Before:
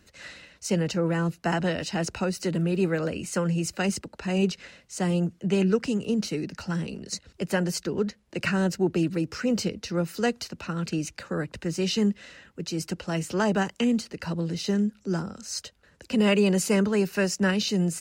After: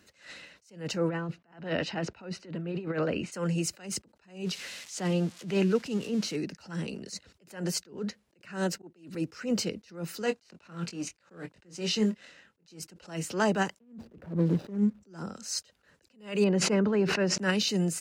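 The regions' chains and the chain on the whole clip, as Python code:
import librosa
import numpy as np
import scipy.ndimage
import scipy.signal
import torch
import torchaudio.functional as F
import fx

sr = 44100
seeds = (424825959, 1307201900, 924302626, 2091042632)

y = fx.chain(x, sr, fx.lowpass(hz=3200.0, slope=12),
    fx.over_compress(threshold_db=-28.0, ratio=-0.5), at=(1.09, 3.32))
y = fx.chain(y, sr, fx.crossing_spikes(level_db=-28.0),
    fx.lowpass(hz=5500.0, slope=12), at=(4.45, 6.36))
y = fx.chain(y, sr, fx.peak_eq(hz=91.0, db=-8.5, octaves=1.4),
    fx.auto_swell(attack_ms=496.0),
    fx.band_squash(depth_pct=40), at=(8.47, 9.15))
y = fx.chain(y, sr, fx.law_mismatch(coded='A'),
    fx.lowpass(hz=9200.0, slope=12),
    fx.doubler(ms=23.0, db=-9), at=(10.22, 12.8))
y = fx.chain(y, sr, fx.median_filter(points=41),
    fx.tilt_eq(slope=-2.0),
    fx.band_squash(depth_pct=100), at=(13.79, 15.03))
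y = fx.chain(y, sr, fx.spacing_loss(db_at_10k=29),
    fx.sustainer(db_per_s=42.0), at=(16.44, 17.38))
y = fx.highpass(y, sr, hz=190.0, slope=6)
y = fx.attack_slew(y, sr, db_per_s=150.0)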